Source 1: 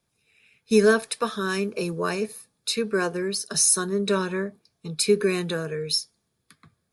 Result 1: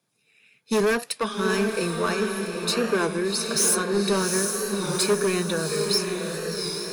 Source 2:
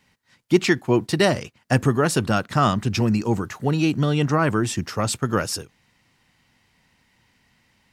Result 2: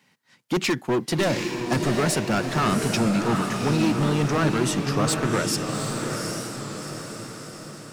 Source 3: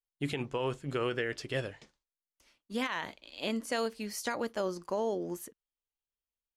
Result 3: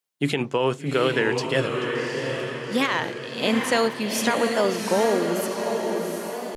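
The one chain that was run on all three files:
HPF 130 Hz 24 dB/oct; hard clip -19.5 dBFS; diffused feedback echo 0.772 s, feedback 54%, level -4 dB; record warp 33 1/3 rpm, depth 100 cents; match loudness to -24 LUFS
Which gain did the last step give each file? +1.0, +0.5, +11.0 dB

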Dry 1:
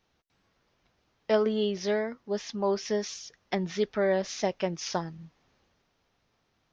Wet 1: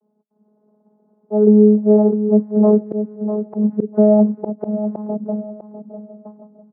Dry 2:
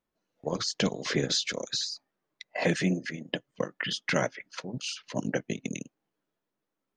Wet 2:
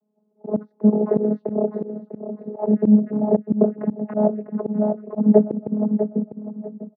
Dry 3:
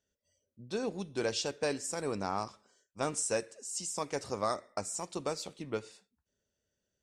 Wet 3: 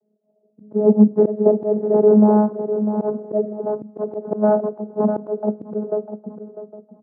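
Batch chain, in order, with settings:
rattling part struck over -37 dBFS, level -22 dBFS; on a send: feedback echo 0.649 s, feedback 23%, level -11 dB; on the sum: AGC gain up to 6 dB; inverse Chebyshev low-pass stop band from 2600 Hz, stop band 60 dB; vocoder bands 16, saw 211 Hz; outdoor echo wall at 250 m, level -29 dB; auto swell 0.203 s; HPF 150 Hz; in parallel at -2.5 dB: compressor, threshold -35 dBFS; on the sum: normalise peaks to -1.5 dBFS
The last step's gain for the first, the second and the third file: +11.0, +14.5, +16.0 dB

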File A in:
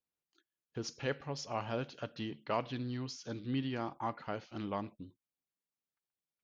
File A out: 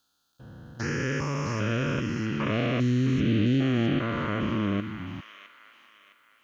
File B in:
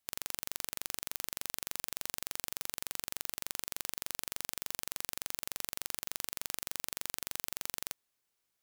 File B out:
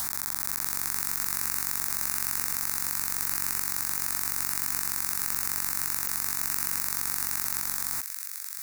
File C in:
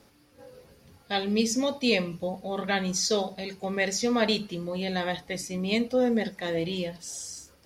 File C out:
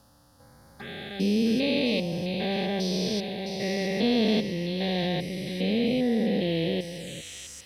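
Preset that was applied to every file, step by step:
stepped spectrum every 0.4 s; envelope phaser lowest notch 360 Hz, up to 1300 Hz, full sweep at -35 dBFS; thin delay 0.661 s, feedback 39%, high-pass 1800 Hz, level -6 dB; match loudness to -27 LUFS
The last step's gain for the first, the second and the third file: +19.0, +17.5, +6.0 dB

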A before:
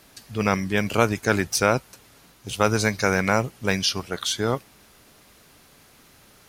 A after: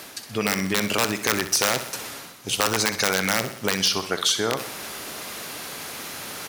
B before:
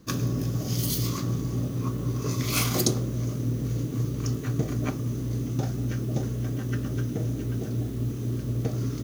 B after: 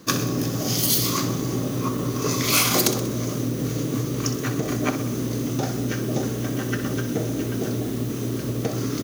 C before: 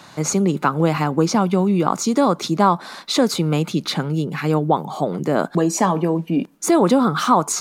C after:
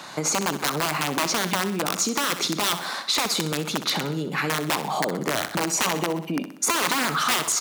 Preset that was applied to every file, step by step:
wrapped overs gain 10.5 dB; reverse; upward compressor, threshold -30 dBFS; reverse; limiter -15.5 dBFS; compressor, threshold -24 dBFS; HPF 360 Hz 6 dB/oct; on a send: feedback echo 63 ms, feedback 54%, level -11.5 dB; on the sum: match loudness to -24 LUFS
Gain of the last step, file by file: +7.5, +11.5, +5.0 dB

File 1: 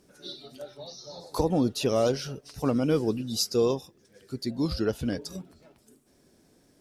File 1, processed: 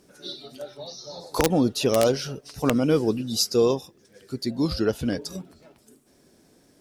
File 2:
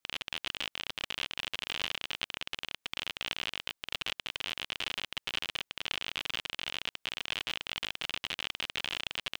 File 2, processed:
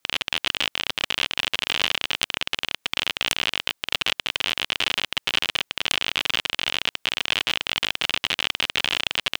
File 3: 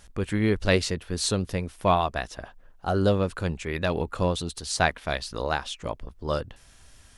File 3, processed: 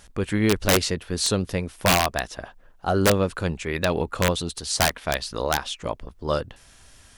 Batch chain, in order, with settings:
low shelf 110 Hz -4.5 dB; wrapped overs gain 14 dB; match loudness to -24 LUFS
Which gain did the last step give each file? +4.5, +12.0, +3.5 dB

